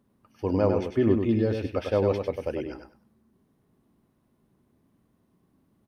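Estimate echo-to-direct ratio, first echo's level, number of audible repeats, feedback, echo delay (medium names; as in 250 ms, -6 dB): -5.5 dB, -5.5 dB, 3, 20%, 99 ms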